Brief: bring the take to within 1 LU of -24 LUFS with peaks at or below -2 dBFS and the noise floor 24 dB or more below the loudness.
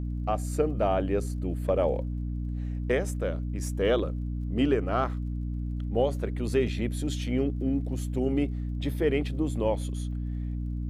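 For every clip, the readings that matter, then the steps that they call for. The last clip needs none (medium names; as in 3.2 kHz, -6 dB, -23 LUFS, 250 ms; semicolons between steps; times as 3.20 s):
tick rate 29 per s; hum 60 Hz; highest harmonic 300 Hz; hum level -29 dBFS; loudness -29.5 LUFS; peak level -13.0 dBFS; loudness target -24.0 LUFS
-> de-click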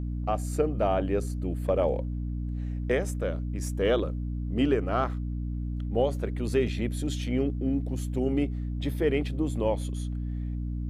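tick rate 0.092 per s; hum 60 Hz; highest harmonic 300 Hz; hum level -29 dBFS
-> de-hum 60 Hz, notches 5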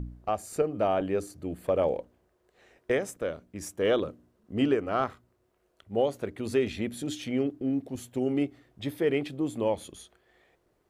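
hum not found; loudness -30.0 LUFS; peak level -14.0 dBFS; loudness target -24.0 LUFS
-> trim +6 dB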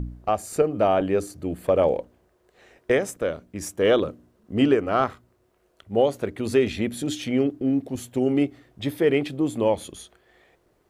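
loudness -24.0 LUFS; peak level -8.0 dBFS; noise floor -65 dBFS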